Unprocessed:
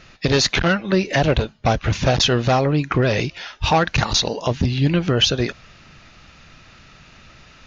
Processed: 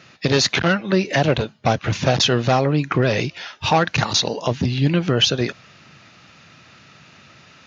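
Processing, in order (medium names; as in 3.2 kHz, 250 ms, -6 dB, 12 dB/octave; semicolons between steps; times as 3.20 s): high-pass 100 Hz 24 dB/octave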